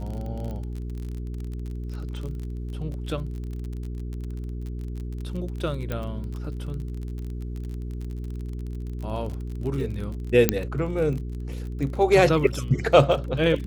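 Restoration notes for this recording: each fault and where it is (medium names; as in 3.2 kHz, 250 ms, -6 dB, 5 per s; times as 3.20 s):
crackle 34 per s -32 dBFS
hum 60 Hz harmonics 7 -32 dBFS
0.51 s: pop -25 dBFS
5.92 s: pop -16 dBFS
10.49 s: pop -2 dBFS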